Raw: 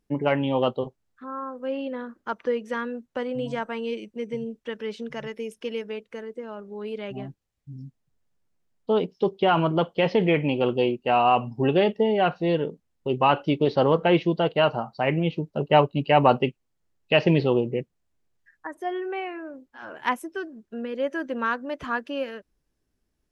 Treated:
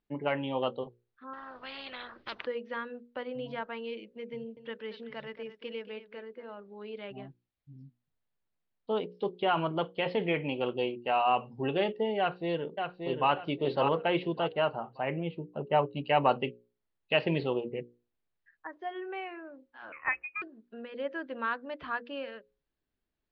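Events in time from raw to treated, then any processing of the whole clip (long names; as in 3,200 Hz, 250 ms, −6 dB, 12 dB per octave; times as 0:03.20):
0:01.33–0:02.45: every bin compressed towards the loudest bin 4 to 1
0:04.34–0:06.55: single-tap delay 227 ms −13 dB
0:12.19–0:13.30: delay throw 580 ms, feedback 30%, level −5 dB
0:14.52–0:15.91: low-pass filter 2,400 Hz → 1,300 Hz 6 dB per octave
0:19.92–0:20.42: voice inversion scrambler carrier 2,800 Hz
whole clip: Butterworth low-pass 4,500 Hz 48 dB per octave; low-shelf EQ 400 Hz −6 dB; mains-hum notches 60/120/180/240/300/360/420/480/540 Hz; level −5.5 dB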